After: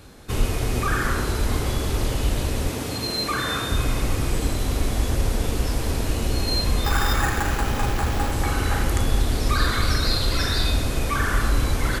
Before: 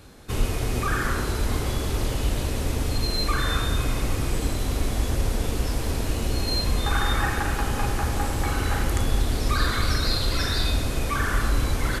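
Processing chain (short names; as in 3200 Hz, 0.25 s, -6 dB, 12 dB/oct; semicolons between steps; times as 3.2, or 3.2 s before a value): 2.69–3.72 HPF 130 Hz 12 dB/oct; 6.84–8.32 sample-rate reducer 8700 Hz, jitter 0%; gain +2 dB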